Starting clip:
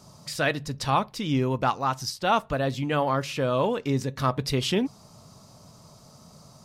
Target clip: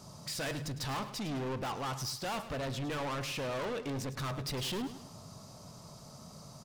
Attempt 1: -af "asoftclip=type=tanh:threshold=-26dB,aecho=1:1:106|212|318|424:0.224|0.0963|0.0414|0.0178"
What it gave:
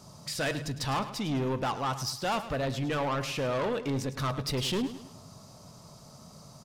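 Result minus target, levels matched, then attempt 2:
soft clip: distortion -5 dB
-af "asoftclip=type=tanh:threshold=-34.5dB,aecho=1:1:106|212|318|424:0.224|0.0963|0.0414|0.0178"

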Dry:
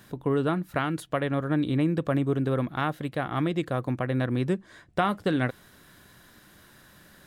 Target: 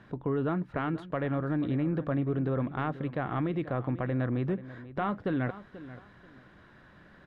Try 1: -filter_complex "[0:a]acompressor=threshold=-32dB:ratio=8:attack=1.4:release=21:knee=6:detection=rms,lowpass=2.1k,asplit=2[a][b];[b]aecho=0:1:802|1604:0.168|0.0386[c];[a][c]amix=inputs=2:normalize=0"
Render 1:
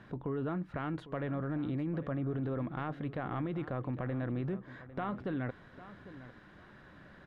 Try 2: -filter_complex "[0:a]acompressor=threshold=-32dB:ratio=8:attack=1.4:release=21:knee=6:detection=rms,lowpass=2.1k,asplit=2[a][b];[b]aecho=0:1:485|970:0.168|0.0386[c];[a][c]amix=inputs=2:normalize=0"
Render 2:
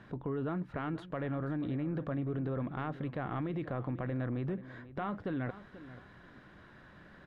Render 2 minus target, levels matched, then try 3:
compressor: peak gain reduction +6.5 dB
-filter_complex "[0:a]acompressor=threshold=-24.5dB:ratio=8:attack=1.4:release=21:knee=6:detection=rms,lowpass=2.1k,asplit=2[a][b];[b]aecho=0:1:485|970:0.168|0.0386[c];[a][c]amix=inputs=2:normalize=0"

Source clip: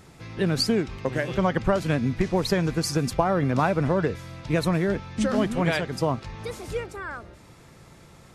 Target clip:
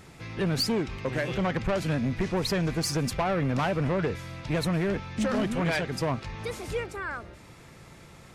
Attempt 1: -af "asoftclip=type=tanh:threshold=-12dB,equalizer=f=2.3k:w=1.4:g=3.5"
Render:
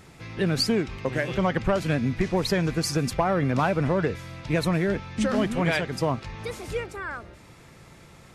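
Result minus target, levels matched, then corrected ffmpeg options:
soft clip: distortion -11 dB
-af "asoftclip=type=tanh:threshold=-21.5dB,equalizer=f=2.3k:w=1.4:g=3.5"

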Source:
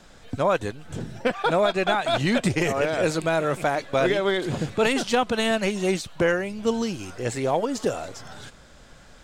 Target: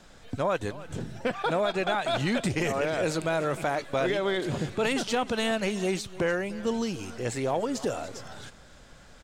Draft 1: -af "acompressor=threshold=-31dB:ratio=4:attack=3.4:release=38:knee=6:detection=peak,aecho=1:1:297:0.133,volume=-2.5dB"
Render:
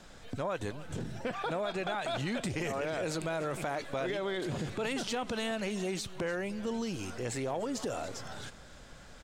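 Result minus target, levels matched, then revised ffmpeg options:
compressor: peak gain reduction +8 dB
-af "acompressor=threshold=-20dB:ratio=4:attack=3.4:release=38:knee=6:detection=peak,aecho=1:1:297:0.133,volume=-2.5dB"

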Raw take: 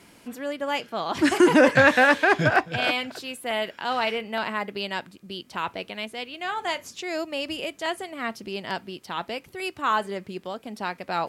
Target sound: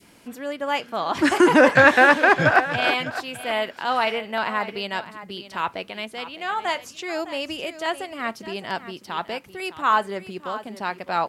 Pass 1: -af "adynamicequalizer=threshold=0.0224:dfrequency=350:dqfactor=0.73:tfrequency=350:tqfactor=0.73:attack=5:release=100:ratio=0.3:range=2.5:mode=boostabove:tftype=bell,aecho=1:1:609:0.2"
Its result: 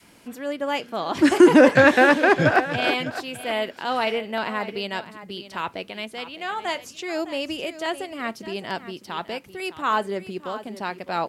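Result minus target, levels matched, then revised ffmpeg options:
250 Hz band +4.0 dB
-af "adynamicequalizer=threshold=0.0224:dfrequency=1100:dqfactor=0.73:tfrequency=1100:tqfactor=0.73:attack=5:release=100:ratio=0.3:range=2.5:mode=boostabove:tftype=bell,aecho=1:1:609:0.2"

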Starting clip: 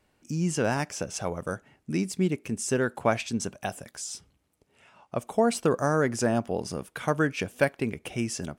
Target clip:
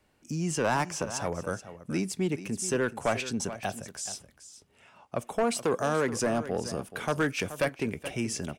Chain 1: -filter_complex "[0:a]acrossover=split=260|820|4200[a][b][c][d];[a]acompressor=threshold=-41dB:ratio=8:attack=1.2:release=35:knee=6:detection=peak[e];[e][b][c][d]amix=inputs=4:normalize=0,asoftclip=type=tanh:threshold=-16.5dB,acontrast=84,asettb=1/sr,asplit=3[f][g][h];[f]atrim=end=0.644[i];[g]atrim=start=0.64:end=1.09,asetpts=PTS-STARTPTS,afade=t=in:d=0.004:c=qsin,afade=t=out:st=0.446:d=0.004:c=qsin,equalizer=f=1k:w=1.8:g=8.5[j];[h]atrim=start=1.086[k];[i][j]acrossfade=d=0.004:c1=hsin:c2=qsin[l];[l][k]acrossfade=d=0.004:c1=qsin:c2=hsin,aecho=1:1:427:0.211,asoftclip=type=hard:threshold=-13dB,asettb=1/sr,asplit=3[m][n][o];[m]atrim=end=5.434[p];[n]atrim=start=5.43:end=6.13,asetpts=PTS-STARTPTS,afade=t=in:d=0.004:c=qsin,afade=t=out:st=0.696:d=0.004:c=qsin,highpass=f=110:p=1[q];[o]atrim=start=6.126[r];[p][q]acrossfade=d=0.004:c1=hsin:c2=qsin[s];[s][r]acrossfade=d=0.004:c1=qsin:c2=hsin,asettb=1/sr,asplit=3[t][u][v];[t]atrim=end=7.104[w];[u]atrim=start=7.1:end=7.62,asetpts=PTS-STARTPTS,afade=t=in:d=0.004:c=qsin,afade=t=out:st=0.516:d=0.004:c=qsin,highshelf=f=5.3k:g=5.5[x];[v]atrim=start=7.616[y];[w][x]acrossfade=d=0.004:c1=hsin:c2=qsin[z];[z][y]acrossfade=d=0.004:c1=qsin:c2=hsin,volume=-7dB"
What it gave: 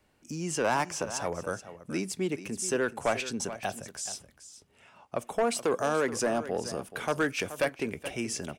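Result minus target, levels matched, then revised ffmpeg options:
compressor: peak gain reduction +9.5 dB
-filter_complex "[0:a]acrossover=split=260|820|4200[a][b][c][d];[a]acompressor=threshold=-30dB:ratio=8:attack=1.2:release=35:knee=6:detection=peak[e];[e][b][c][d]amix=inputs=4:normalize=0,asoftclip=type=tanh:threshold=-16.5dB,acontrast=84,asettb=1/sr,asplit=3[f][g][h];[f]atrim=end=0.644[i];[g]atrim=start=0.64:end=1.09,asetpts=PTS-STARTPTS,afade=t=in:d=0.004:c=qsin,afade=t=out:st=0.446:d=0.004:c=qsin,equalizer=f=1k:w=1.8:g=8.5[j];[h]atrim=start=1.086[k];[i][j]acrossfade=d=0.004:c1=hsin:c2=qsin[l];[l][k]acrossfade=d=0.004:c1=qsin:c2=hsin,aecho=1:1:427:0.211,asoftclip=type=hard:threshold=-13dB,asettb=1/sr,asplit=3[m][n][o];[m]atrim=end=5.434[p];[n]atrim=start=5.43:end=6.13,asetpts=PTS-STARTPTS,afade=t=in:d=0.004:c=qsin,afade=t=out:st=0.696:d=0.004:c=qsin,highpass=f=110:p=1[q];[o]atrim=start=6.126[r];[p][q]acrossfade=d=0.004:c1=hsin:c2=qsin[s];[s][r]acrossfade=d=0.004:c1=qsin:c2=hsin,asettb=1/sr,asplit=3[t][u][v];[t]atrim=end=7.104[w];[u]atrim=start=7.1:end=7.62,asetpts=PTS-STARTPTS,afade=t=in:d=0.004:c=qsin,afade=t=out:st=0.516:d=0.004:c=qsin,highshelf=f=5.3k:g=5.5[x];[v]atrim=start=7.616[y];[w][x]acrossfade=d=0.004:c1=hsin:c2=qsin[z];[z][y]acrossfade=d=0.004:c1=qsin:c2=hsin,volume=-7dB"

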